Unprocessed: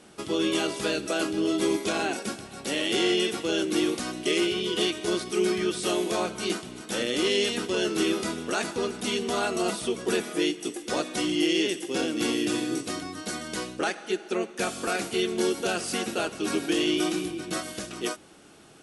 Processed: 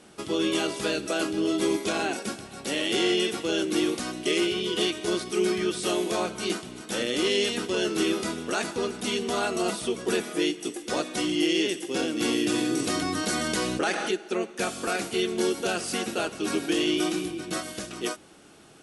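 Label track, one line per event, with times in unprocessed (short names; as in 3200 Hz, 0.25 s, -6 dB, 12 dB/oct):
12.220000	14.110000	fast leveller amount 70%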